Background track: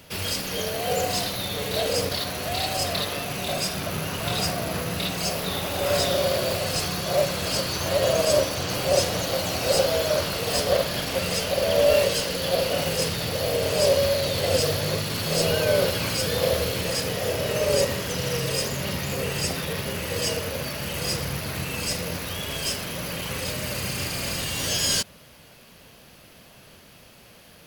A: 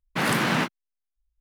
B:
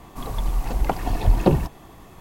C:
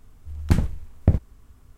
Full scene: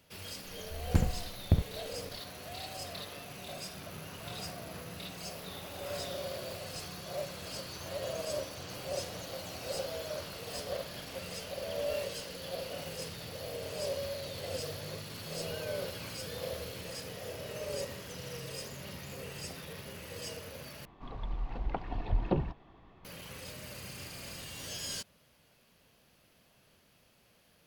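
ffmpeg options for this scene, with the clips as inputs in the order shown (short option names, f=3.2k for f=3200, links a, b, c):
-filter_complex "[0:a]volume=-16dB[a];[2:a]lowpass=f=3.9k:w=0.5412,lowpass=f=3.9k:w=1.3066[b];[a]asplit=2[c][d];[c]atrim=end=20.854[e];[b]atrim=end=2.2,asetpts=PTS-STARTPTS,volume=-12.5dB[f];[d]atrim=start=23.046[g];[3:a]atrim=end=1.77,asetpts=PTS-STARTPTS,volume=-8dB,afade=t=in:d=0.004:c=hsin,afade=t=out:st=1.766:d=0.004:c=hsin,adelay=440[h];[e][f]acrossfade=d=0.004:c1=hsin:c2=hsin[i];[i][g]acrossfade=d=0.004:c1=hsin:c2=hsin[j];[j][h]amix=inputs=2:normalize=0"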